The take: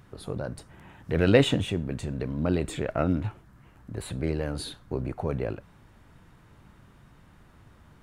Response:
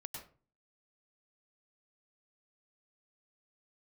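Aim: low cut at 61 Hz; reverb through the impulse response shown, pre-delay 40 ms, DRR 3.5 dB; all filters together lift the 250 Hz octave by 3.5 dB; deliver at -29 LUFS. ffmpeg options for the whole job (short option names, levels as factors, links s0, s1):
-filter_complex "[0:a]highpass=61,equalizer=f=250:t=o:g=4.5,asplit=2[s0][s1];[1:a]atrim=start_sample=2205,adelay=40[s2];[s1][s2]afir=irnorm=-1:irlink=0,volume=0.944[s3];[s0][s3]amix=inputs=2:normalize=0,volume=0.596"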